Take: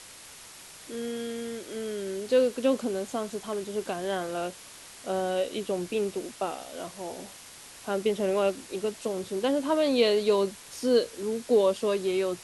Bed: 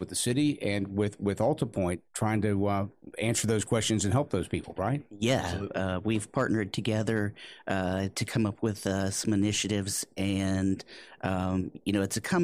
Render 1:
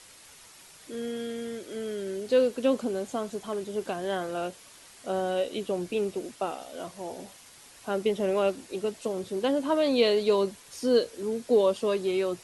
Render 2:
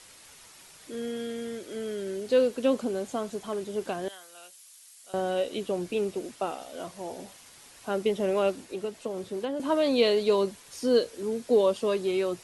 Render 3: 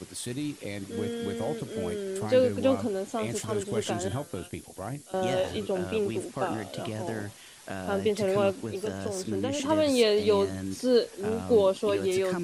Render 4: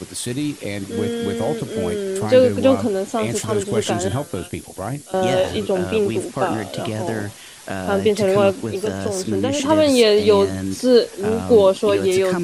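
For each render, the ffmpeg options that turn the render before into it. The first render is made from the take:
-af "afftdn=nr=6:nf=-48"
-filter_complex "[0:a]asettb=1/sr,asplit=3[s0][s1][s2];[s0]atrim=end=4.084[s3];[s1]atrim=start=4.08:end=5.14,asetpts=PTS-STARTPTS,afade=t=in:d=0.004:c=qsin,afade=t=out:st=1.056:d=0.004:c=qsin,aderivative[s4];[s2]atrim=start=5.136[s5];[s3][s4]acrossfade=d=0.004:c1=hsin:c2=qsin[s6];[s6][s5]acrossfade=d=0.004:c1=qsin:c2=hsin,asettb=1/sr,asplit=3[s7][s8][s9];[s7]atrim=end=8.604[s10];[s8]atrim=start=8.6:end=9.6,asetpts=PTS-STARTPTS,afade=t=in:d=0.004:c=qsin,afade=t=out:st=0.996:d=0.004:c=qsin,acrossover=split=480|2900[s11][s12][s13];[s11]acompressor=threshold=0.02:ratio=4[s14];[s12]acompressor=threshold=0.0178:ratio=4[s15];[s13]acompressor=threshold=0.00251:ratio=4[s16];[s14][s15][s16]amix=inputs=3:normalize=0[s17];[s9]atrim=start=9.596[s18];[s10][s17]acrossfade=d=0.004:c1=hsin:c2=qsin[s19];[s19][s18]acrossfade=d=0.004:c1=qsin:c2=hsin"
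-filter_complex "[1:a]volume=0.447[s0];[0:a][s0]amix=inputs=2:normalize=0"
-af "volume=2.99,alimiter=limit=0.708:level=0:latency=1"

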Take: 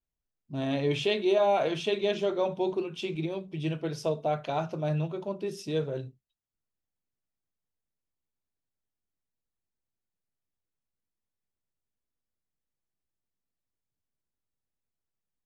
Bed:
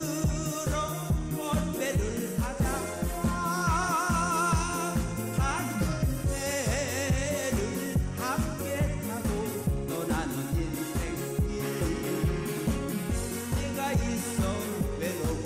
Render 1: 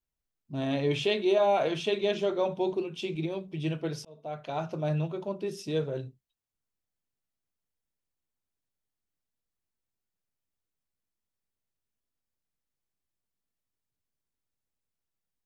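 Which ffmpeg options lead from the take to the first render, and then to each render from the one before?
-filter_complex "[0:a]asettb=1/sr,asplit=3[s0][s1][s2];[s0]atrim=end=2.724[s3];[s1]atrim=start=2.72:end=3.23,asetpts=PTS-STARTPTS,afade=t=in:d=0.004:c=qsin,afade=t=out:st=0.506:d=0.004:c=qsin,equalizer=f=1300:w=1.5:g=-5[s4];[s2]atrim=start=3.226[s5];[s3][s4]acrossfade=d=0.004:c1=hsin:c2=qsin[s6];[s6][s5]acrossfade=d=0.004:c1=qsin:c2=hsin,asplit=2[s7][s8];[s7]atrim=end=4.05,asetpts=PTS-STARTPTS,afade=t=out:st=4.046:d=0.004:c=hsin[s9];[s8]atrim=start=4.05,asetpts=PTS-STARTPTS,afade=t=in:d=0.71[s10];[s9][s10]concat=n=2:v=0:a=1"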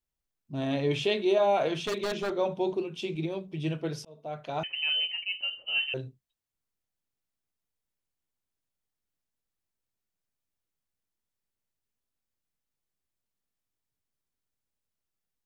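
-filter_complex "[0:a]asettb=1/sr,asplit=3[s0][s1][s2];[s0]atrim=end=1.764[s3];[s1]atrim=start=1.76:end=2.35,asetpts=PTS-STARTPTS,afade=t=in:d=0.004:c=qsin,afade=t=out:st=0.586:d=0.004:c=qsin,aeval=exprs='0.0596*(abs(mod(val(0)/0.0596+3,4)-2)-1)':c=same[s4];[s2]atrim=start=2.346[s5];[s3][s4]acrossfade=d=0.004:c1=hsin:c2=qsin[s6];[s6][s5]acrossfade=d=0.004:c1=qsin:c2=hsin,asettb=1/sr,asplit=3[s7][s8][s9];[s7]atrim=end=4.634[s10];[s8]atrim=start=4.63:end=5.94,asetpts=PTS-STARTPTS,afade=t=in:d=0.004:c=qsin,afade=t=out:st=1.306:d=0.004:c=qsin,lowpass=f=2700:t=q:w=0.5098,lowpass=f=2700:t=q:w=0.6013,lowpass=f=2700:t=q:w=0.9,lowpass=f=2700:t=q:w=2.563,afreqshift=-3200[s11];[s9]atrim=start=5.936[s12];[s10][s11]acrossfade=d=0.004:c1=hsin:c2=qsin[s13];[s13][s12]acrossfade=d=0.004:c1=qsin:c2=hsin"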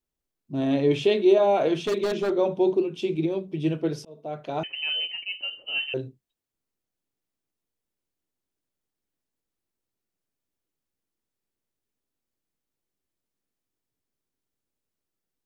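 -af "equalizer=f=330:w=0.89:g=8.5"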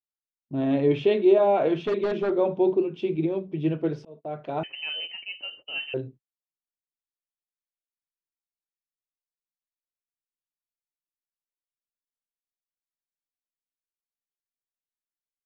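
-af "lowpass=2500,agate=range=0.0398:threshold=0.00501:ratio=16:detection=peak"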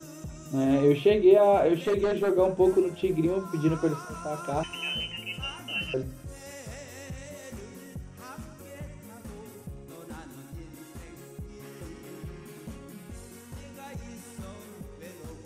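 -filter_complex "[1:a]volume=0.224[s0];[0:a][s0]amix=inputs=2:normalize=0"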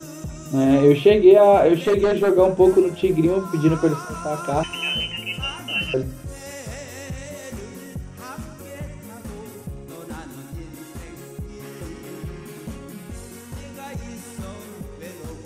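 -af "volume=2.37,alimiter=limit=0.708:level=0:latency=1"

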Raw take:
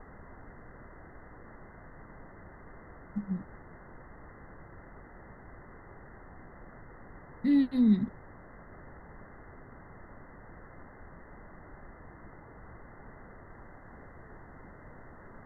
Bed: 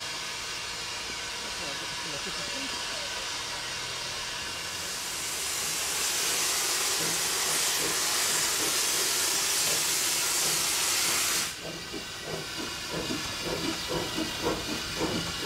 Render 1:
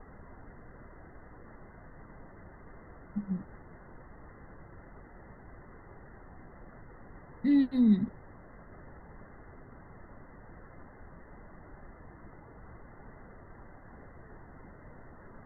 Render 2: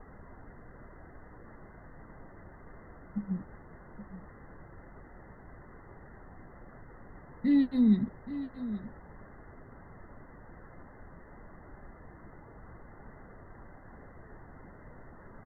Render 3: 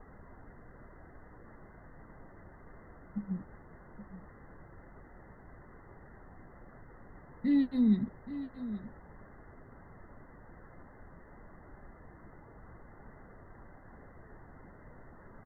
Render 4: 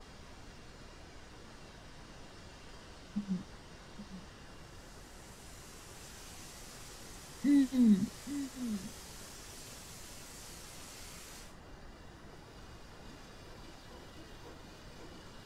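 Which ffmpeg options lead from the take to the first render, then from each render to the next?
-af "afftdn=nr=6:nf=-52"
-af "aecho=1:1:825:0.224"
-af "volume=0.75"
-filter_complex "[1:a]volume=0.0562[s0];[0:a][s0]amix=inputs=2:normalize=0"

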